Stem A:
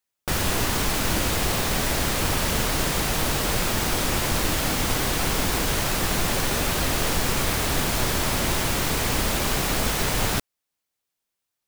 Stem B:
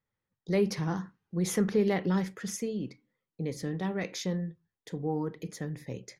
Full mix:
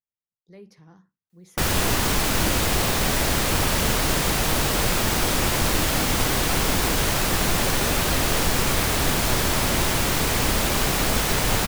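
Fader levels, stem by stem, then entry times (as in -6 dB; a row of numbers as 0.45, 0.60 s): +2.0, -19.5 dB; 1.30, 0.00 s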